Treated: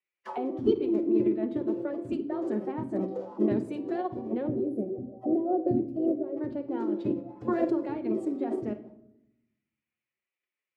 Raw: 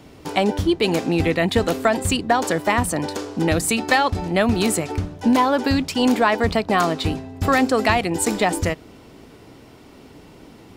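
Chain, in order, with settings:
noise gate −38 dBFS, range −31 dB
on a send: flutter between parallel walls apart 8.5 metres, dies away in 0.22 s
on the sum: envelope filter 310–2,200 Hz, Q 4.9, down, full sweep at −20 dBFS
phase-vocoder pitch shift with formants kept +4.5 semitones
gain on a spectral selection 0:04.47–0:06.37, 790–9,300 Hz −19 dB
rectangular room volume 2,600 cubic metres, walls furnished, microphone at 0.95 metres
every ending faded ahead of time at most 390 dB per second

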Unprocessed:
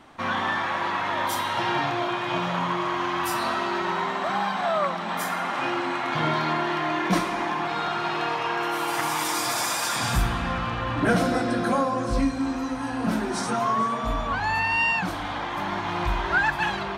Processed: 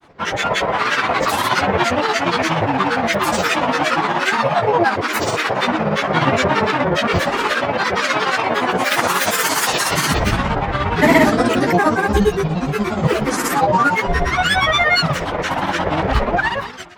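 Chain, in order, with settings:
fade-out on the ending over 0.77 s
automatic gain control gain up to 6.5 dB
granular cloud, grains 17 per second, pitch spread up and down by 12 semitones
level +4 dB

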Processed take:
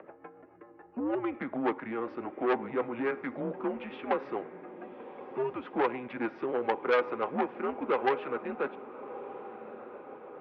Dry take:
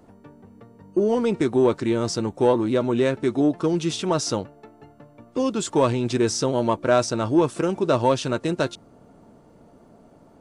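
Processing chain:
upward compression, threshold −32 dBFS
rotating-speaker cabinet horn 7 Hz
feedback delay with all-pass diffusion 1,177 ms, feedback 54%, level −15.5 dB
convolution reverb RT60 0.75 s, pre-delay 46 ms, DRR 19 dB
single-sideband voice off tune −120 Hz 520–2,400 Hz
saturating transformer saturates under 1,400 Hz

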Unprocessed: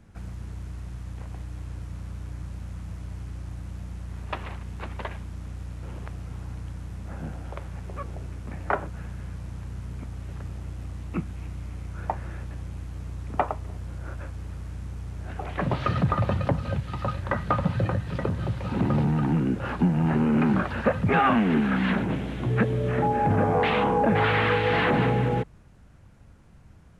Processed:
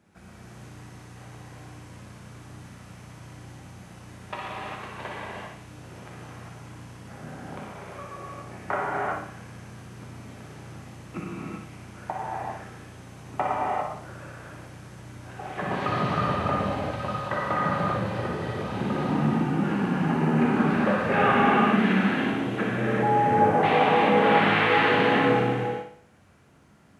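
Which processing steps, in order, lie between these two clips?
Bessel high-pass filter 210 Hz, order 2
on a send: flutter between parallel walls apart 10.1 metres, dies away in 0.52 s
on the sum: reverb whose tail is shaped and stops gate 430 ms flat, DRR −6 dB
level −4.5 dB

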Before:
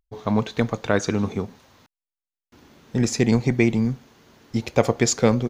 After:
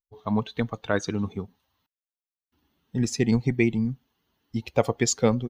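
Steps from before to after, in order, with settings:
spectral dynamics exaggerated over time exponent 1.5
level −1.5 dB

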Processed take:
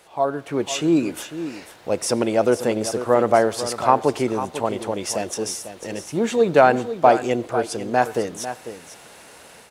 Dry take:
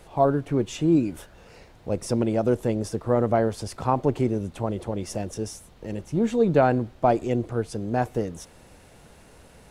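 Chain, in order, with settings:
high-pass filter 810 Hz 6 dB per octave
automatic gain control gain up to 8.5 dB
single-tap delay 497 ms −11.5 dB
on a send at −23 dB: convolution reverb RT60 0.55 s, pre-delay 77 ms
on the sum: level +2.5 dB

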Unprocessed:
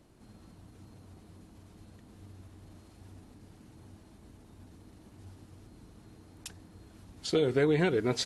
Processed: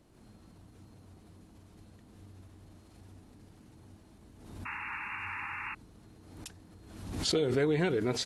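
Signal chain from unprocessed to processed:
sound drawn into the spectrogram noise, 0:04.65–0:05.75, 800–2,800 Hz −37 dBFS
background raised ahead of every attack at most 53 dB per second
level −2.5 dB

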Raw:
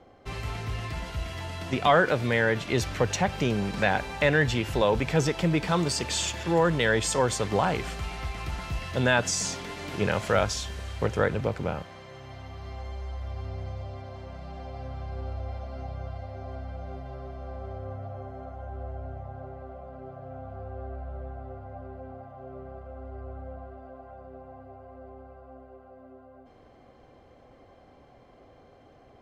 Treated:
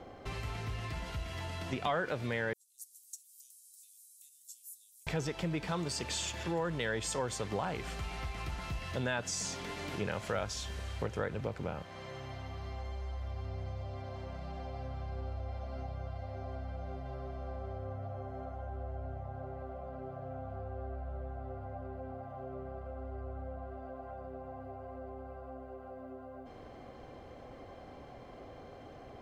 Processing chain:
0:02.53–0:05.07: inverse Chebyshev high-pass filter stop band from 1,800 Hz, stop band 80 dB
downward compressor 2 to 1, threshold −50 dBFS, peak gain reduction 18 dB
level +5 dB

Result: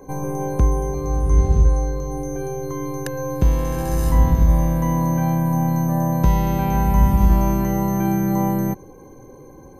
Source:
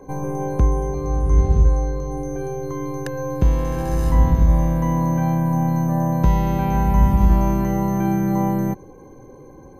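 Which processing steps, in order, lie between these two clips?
high-shelf EQ 6,600 Hz +10 dB

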